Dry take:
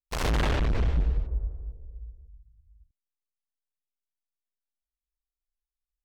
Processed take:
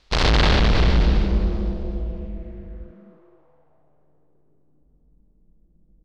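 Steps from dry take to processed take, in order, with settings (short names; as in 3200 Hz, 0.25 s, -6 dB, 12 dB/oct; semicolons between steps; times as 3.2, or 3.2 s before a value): per-bin compression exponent 0.6; low-pass sweep 4400 Hz -> 220 Hz, 1.62–5.16; frequency-shifting echo 0.257 s, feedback 44%, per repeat +150 Hz, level -13 dB; gain +6 dB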